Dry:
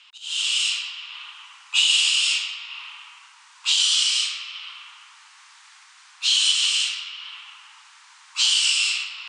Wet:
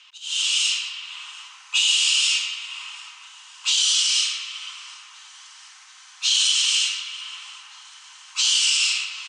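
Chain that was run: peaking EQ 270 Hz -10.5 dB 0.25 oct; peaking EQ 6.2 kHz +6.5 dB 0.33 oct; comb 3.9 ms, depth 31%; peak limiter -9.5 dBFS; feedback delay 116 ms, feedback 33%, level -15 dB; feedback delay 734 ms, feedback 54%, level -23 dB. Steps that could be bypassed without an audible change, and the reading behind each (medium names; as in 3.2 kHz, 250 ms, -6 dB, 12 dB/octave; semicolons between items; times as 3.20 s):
peaking EQ 270 Hz: input has nothing below 850 Hz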